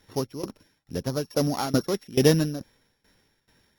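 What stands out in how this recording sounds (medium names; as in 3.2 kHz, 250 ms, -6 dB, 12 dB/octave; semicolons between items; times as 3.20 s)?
a buzz of ramps at a fixed pitch in blocks of 8 samples; tremolo saw down 2.3 Hz, depth 90%; Opus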